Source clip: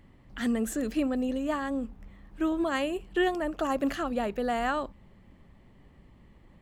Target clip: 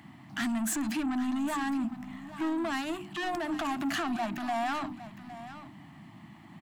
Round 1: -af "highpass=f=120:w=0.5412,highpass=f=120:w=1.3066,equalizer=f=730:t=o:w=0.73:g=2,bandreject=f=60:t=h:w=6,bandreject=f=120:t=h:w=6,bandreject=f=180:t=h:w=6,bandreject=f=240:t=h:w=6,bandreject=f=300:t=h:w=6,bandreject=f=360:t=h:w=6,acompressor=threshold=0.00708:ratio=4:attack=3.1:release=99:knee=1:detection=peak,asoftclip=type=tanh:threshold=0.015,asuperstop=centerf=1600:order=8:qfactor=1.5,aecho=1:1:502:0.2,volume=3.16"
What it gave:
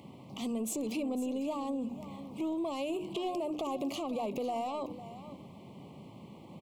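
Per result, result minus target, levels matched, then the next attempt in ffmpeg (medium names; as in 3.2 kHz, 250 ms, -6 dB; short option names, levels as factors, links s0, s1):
2 kHz band -11.5 dB; compression: peak gain reduction +8 dB; echo 309 ms early
-af "highpass=f=120:w=0.5412,highpass=f=120:w=1.3066,equalizer=f=730:t=o:w=0.73:g=2,bandreject=f=60:t=h:w=6,bandreject=f=120:t=h:w=6,bandreject=f=180:t=h:w=6,bandreject=f=240:t=h:w=6,bandreject=f=300:t=h:w=6,bandreject=f=360:t=h:w=6,acompressor=threshold=0.00708:ratio=4:attack=3.1:release=99:knee=1:detection=peak,asoftclip=type=tanh:threshold=0.015,asuperstop=centerf=470:order=8:qfactor=1.5,aecho=1:1:502:0.2,volume=3.16"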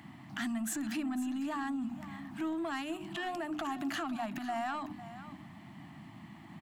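compression: peak gain reduction +8 dB; echo 309 ms early
-af "highpass=f=120:w=0.5412,highpass=f=120:w=1.3066,equalizer=f=730:t=o:w=0.73:g=2,bandreject=f=60:t=h:w=6,bandreject=f=120:t=h:w=6,bandreject=f=180:t=h:w=6,bandreject=f=240:t=h:w=6,bandreject=f=300:t=h:w=6,bandreject=f=360:t=h:w=6,acompressor=threshold=0.0237:ratio=4:attack=3.1:release=99:knee=1:detection=peak,asoftclip=type=tanh:threshold=0.015,asuperstop=centerf=470:order=8:qfactor=1.5,aecho=1:1:502:0.2,volume=3.16"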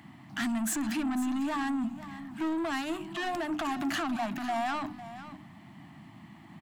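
echo 309 ms early
-af "highpass=f=120:w=0.5412,highpass=f=120:w=1.3066,equalizer=f=730:t=o:w=0.73:g=2,bandreject=f=60:t=h:w=6,bandreject=f=120:t=h:w=6,bandreject=f=180:t=h:w=6,bandreject=f=240:t=h:w=6,bandreject=f=300:t=h:w=6,bandreject=f=360:t=h:w=6,acompressor=threshold=0.0237:ratio=4:attack=3.1:release=99:knee=1:detection=peak,asoftclip=type=tanh:threshold=0.015,asuperstop=centerf=470:order=8:qfactor=1.5,aecho=1:1:811:0.2,volume=3.16"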